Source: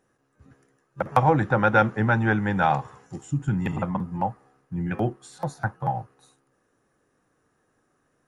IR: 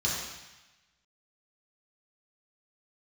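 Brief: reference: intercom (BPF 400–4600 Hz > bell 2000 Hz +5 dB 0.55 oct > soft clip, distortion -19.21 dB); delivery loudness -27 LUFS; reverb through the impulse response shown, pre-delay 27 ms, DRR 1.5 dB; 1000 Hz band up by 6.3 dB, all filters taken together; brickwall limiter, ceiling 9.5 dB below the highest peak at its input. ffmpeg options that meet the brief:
-filter_complex "[0:a]equalizer=f=1k:t=o:g=8.5,alimiter=limit=-8.5dB:level=0:latency=1,asplit=2[a][b];[1:a]atrim=start_sample=2205,adelay=27[c];[b][c]afir=irnorm=-1:irlink=0,volume=-10dB[d];[a][d]amix=inputs=2:normalize=0,highpass=400,lowpass=4.6k,equalizer=f=2k:t=o:w=0.55:g=5,asoftclip=threshold=-10dB,volume=-3.5dB"

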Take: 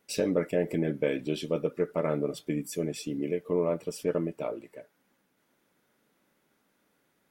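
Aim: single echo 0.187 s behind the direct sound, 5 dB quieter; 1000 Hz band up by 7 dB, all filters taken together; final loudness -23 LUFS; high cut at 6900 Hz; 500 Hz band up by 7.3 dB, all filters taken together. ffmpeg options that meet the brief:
-af "lowpass=6.9k,equalizer=f=500:t=o:g=7,equalizer=f=1k:t=o:g=7,aecho=1:1:187:0.562,volume=0.5dB"

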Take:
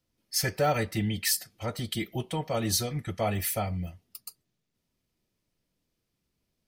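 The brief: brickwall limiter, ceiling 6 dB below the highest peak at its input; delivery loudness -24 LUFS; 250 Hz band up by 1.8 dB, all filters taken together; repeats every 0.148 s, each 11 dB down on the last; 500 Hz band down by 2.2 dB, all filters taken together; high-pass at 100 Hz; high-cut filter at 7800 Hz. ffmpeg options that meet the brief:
-af "highpass=100,lowpass=7.8k,equalizer=f=250:t=o:g=3.5,equalizer=f=500:t=o:g=-3.5,alimiter=limit=-21.5dB:level=0:latency=1,aecho=1:1:148|296|444:0.282|0.0789|0.0221,volume=8.5dB"

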